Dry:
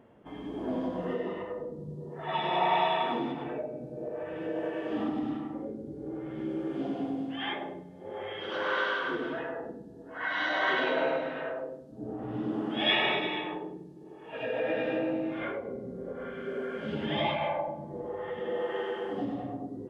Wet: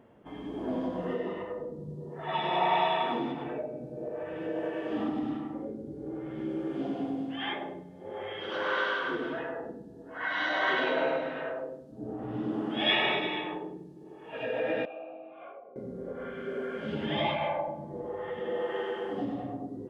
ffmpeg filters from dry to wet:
-filter_complex "[0:a]asettb=1/sr,asplit=3[a][b][c];[a]atrim=end=14.854[d];[b]atrim=start=14.85:end=15.76,asetpts=PTS-STARTPTS,afade=t=in:d=0.004:c=qsin,afade=t=out:st=0.906:d=0.004:c=qsin,asplit=3[e][f][g];[e]bandpass=f=730:t=q:w=8,volume=0dB[h];[f]bandpass=f=1.09k:t=q:w=8,volume=-6dB[i];[g]bandpass=f=2.44k:t=q:w=8,volume=-9dB[j];[h][i][j]amix=inputs=3:normalize=0[k];[c]atrim=start=15.756[l];[d][k]acrossfade=d=0.004:c1=hsin:c2=qsin[m];[m][l]acrossfade=d=0.004:c1=qsin:c2=hsin"

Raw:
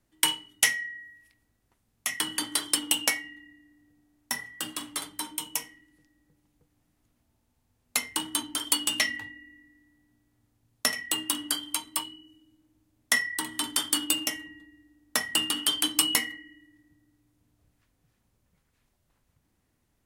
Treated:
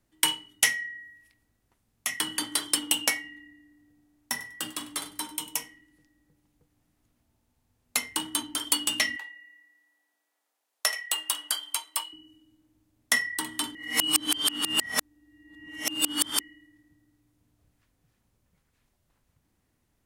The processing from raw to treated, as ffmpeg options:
-filter_complex "[0:a]asettb=1/sr,asplit=3[a][b][c];[a]atrim=end=3.234[d];[b]atrim=start=3.23:end=5.64,asetpts=PTS-STARTPTS,afade=t=in:d=0.004:c=qsin,afade=t=out:st=2.406:d=0.004:c=qsin,aecho=1:1:98|196:0.126|0.0252,atrim=end_sample=106281[e];[c]atrim=start=5.636[f];[d][e]acrossfade=d=0.004:c1=hsin:c2=qsin[g];[g][f]acrossfade=d=0.004:c1=qsin:c2=hsin,asettb=1/sr,asplit=3[h][i][j];[h]atrim=end=9.164[k];[i]atrim=start=9.16:end=12.13,asetpts=PTS-STARTPTS,afade=t=in:d=0.004:c=qsin,afade=t=out:st=2.966:d=0.004:c=qsin,highpass=f=530:w=0.5412,highpass=f=530:w=1.3066[l];[j]atrim=start=12.126[m];[k][l]acrossfade=d=0.004:c1=hsin:c2=qsin[n];[n][m]acrossfade=d=0.004:c1=qsin:c2=hsin,asplit=3[o][p][q];[o]atrim=end=13.752[r];[p]atrim=start=13.748:end=16.402,asetpts=PTS-STARTPTS,areverse[s];[q]atrim=start=16.398[t];[r][s]acrossfade=d=0.004:c1=hsin:c2=hsin[u];[u][t]acrossfade=d=0.004:c1=hsin:c2=hsin"

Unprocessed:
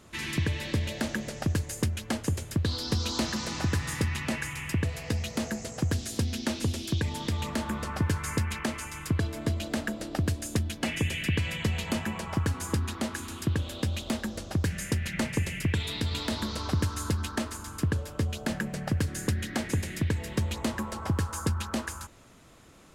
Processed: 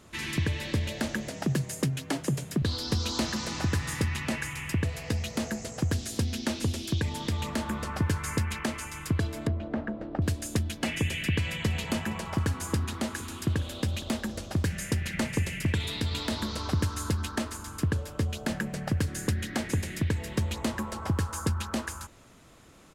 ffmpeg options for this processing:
-filter_complex "[0:a]asettb=1/sr,asplit=3[a][b][c];[a]atrim=end=1.284[d];[b]atrim=start=1.28:end=2.62,asetpts=PTS-STARTPTS,afade=t=in:d=0.004:c=qsin,afade=t=out:st=1.336:d=0.004:c=qsin,afreqshift=50[e];[c]atrim=start=2.616[f];[d][e]acrossfade=d=0.004:c1=hsin:c2=qsin[g];[g][f]acrossfade=d=0.004:c1=qsin:c2=hsin,asettb=1/sr,asplit=3[h][i][j];[h]atrim=end=9.474[k];[i]atrim=start=9.47:end=10.22,asetpts=PTS-STARTPTS,afade=t=in:d=0.004:c=qsin,afade=t=out:st=0.746:d=0.004:c=qsin,lowpass=1.3k[l];[j]atrim=start=10.216[m];[k][l]acrossfade=d=0.004:c1=hsin:c2=qsin[n];[n][m]acrossfade=d=0.004:c1=qsin:c2=hsin,asplit=3[o][p][q];[o]afade=t=out:st=11.64:d=0.02[r];[p]aecho=1:1:465:0.119,afade=t=in:st=11.64:d=0.02,afade=t=out:st=16.04:d=0.02[s];[q]afade=t=in:st=16.04:d=0.02[t];[r][s][t]amix=inputs=3:normalize=0"

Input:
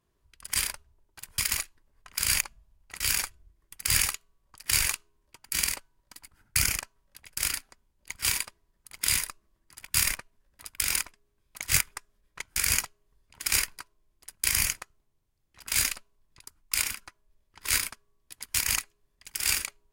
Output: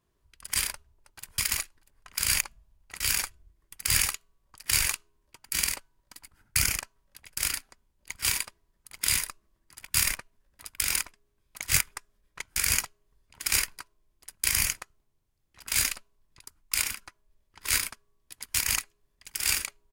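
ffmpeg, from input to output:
-filter_complex "[0:a]asplit=2[a][b];[b]afade=t=in:st=0.72:d=0.01,afade=t=out:st=1.35:d=0.01,aecho=0:1:320|640|960|1280:0.188365|0.075346|0.0301384|0.0120554[c];[a][c]amix=inputs=2:normalize=0"

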